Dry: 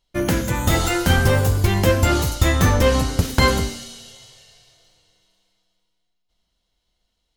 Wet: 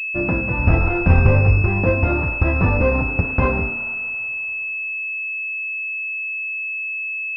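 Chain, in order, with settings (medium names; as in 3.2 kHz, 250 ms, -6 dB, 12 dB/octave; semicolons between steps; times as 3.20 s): 0.59–1.62 s: bass shelf 120 Hz +8.5 dB; class-D stage that switches slowly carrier 2.6 kHz; trim -1 dB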